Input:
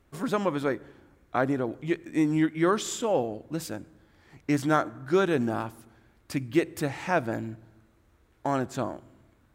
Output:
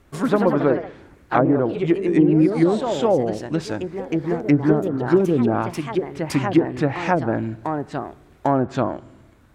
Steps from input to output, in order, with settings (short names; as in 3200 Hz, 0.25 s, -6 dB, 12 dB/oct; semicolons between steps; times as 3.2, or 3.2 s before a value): treble ducked by the level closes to 360 Hz, closed at -19.5 dBFS; echoes that change speed 0.123 s, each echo +2 st, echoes 3, each echo -6 dB; gain +9 dB